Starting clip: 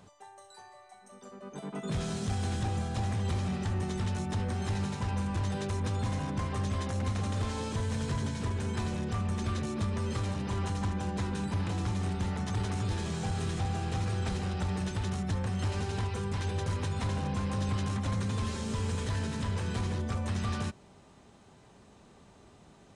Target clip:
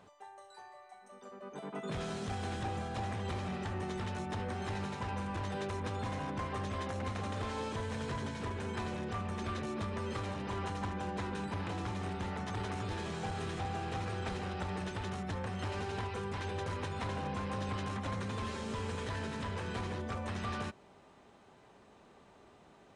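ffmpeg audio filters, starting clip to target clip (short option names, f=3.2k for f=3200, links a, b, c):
-af "bass=f=250:g=-9,treble=f=4k:g=-9"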